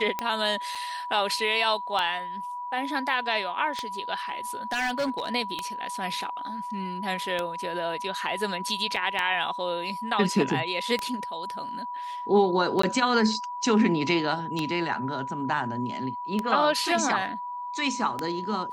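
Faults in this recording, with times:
scratch tick 33 1/3 rpm −13 dBFS
whistle 980 Hz −32 dBFS
0:00.75: drop-out 4.9 ms
0:04.72–0:05.29: clipping −23 dBFS
0:08.96: drop-out 4.3 ms
0:12.82–0:12.83: drop-out 14 ms

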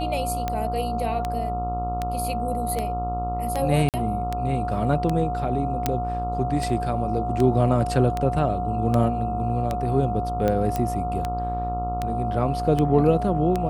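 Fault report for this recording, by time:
mains buzz 60 Hz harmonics 23 −30 dBFS
scratch tick 78 rpm −12 dBFS
whistle 720 Hz −27 dBFS
0:03.89–0:03.94: drop-out 48 ms
0:05.86: click −7 dBFS
0:10.76: click −12 dBFS

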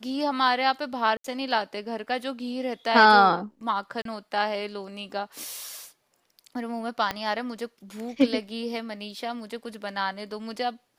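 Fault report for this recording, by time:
0:01.17–0:01.24: drop-out 73 ms
0:04.02–0:04.05: drop-out 33 ms
0:07.11: click −13 dBFS

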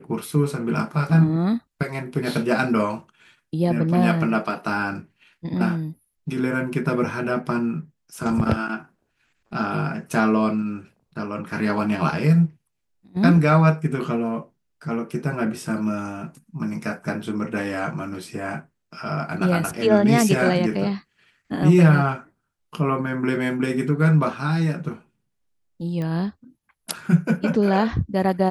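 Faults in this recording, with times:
0:26.02: click −19 dBFS

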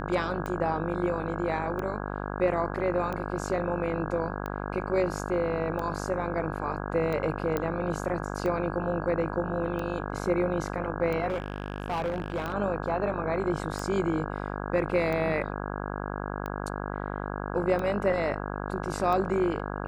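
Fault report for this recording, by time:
mains buzz 50 Hz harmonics 33 −34 dBFS
scratch tick 45 rpm −21 dBFS
0:07.57: click −15 dBFS
0:11.30–0:12.54: clipping −25.5 dBFS

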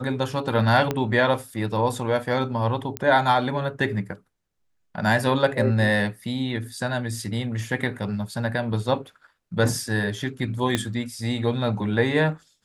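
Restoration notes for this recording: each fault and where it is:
0:00.91: click −10 dBFS
0:02.97: click −12 dBFS
0:10.75: click −8 dBFS

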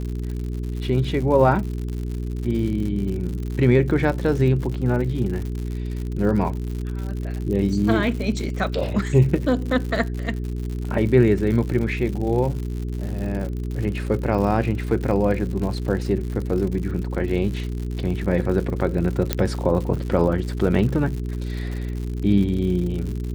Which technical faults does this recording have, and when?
surface crackle 110 per second −29 dBFS
mains hum 60 Hz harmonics 7 −27 dBFS
0:19.33: click −5 dBFS

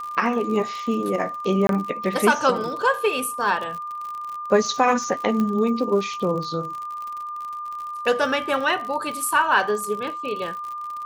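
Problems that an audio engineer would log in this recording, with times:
surface crackle 53 per second −30 dBFS
whistle 1,200 Hz −29 dBFS
0:01.67–0:01.69: drop-out 22 ms
0:05.40: click −14 dBFS

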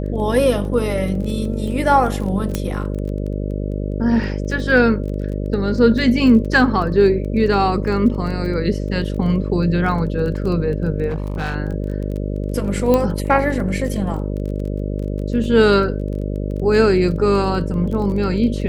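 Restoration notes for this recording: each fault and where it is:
mains buzz 50 Hz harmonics 12 −23 dBFS
surface crackle 19 per second −27 dBFS
0:02.55: click −7 dBFS
0:11.08–0:11.56: clipping −18.5 dBFS
0:12.94: click −5 dBFS

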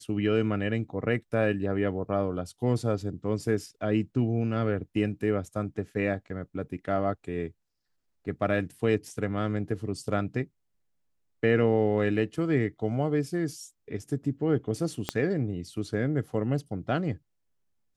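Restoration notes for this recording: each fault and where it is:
0:15.09: click −12 dBFS

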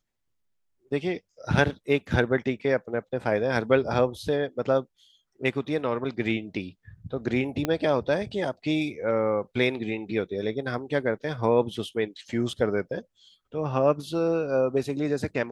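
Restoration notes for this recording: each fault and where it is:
0:07.65: click −11 dBFS

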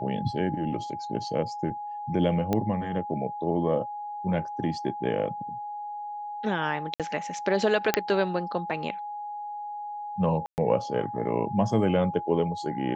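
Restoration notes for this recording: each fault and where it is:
whistle 830 Hz −33 dBFS
0:02.53: click −13 dBFS
0:06.94–0:07.00: drop-out 57 ms
0:07.94: click −5 dBFS
0:10.46–0:10.58: drop-out 119 ms

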